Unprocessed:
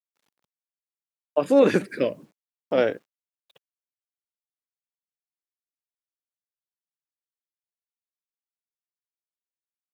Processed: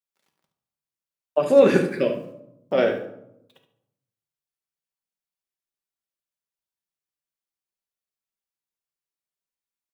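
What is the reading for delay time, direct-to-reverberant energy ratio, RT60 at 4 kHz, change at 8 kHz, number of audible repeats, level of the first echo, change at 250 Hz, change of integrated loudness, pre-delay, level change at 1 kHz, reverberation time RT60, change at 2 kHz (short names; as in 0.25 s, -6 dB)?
72 ms, 2.5 dB, 0.45 s, n/a, 1, -12.0 dB, +0.5 dB, +2.0 dB, 5 ms, +1.0 dB, 0.80 s, +2.0 dB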